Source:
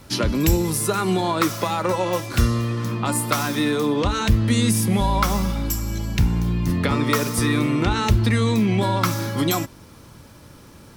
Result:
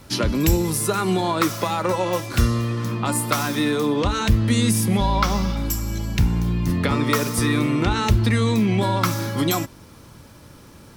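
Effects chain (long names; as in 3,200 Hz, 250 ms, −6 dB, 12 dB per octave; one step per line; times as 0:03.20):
0:04.97–0:05.57: high shelf with overshoot 6,800 Hz −8 dB, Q 1.5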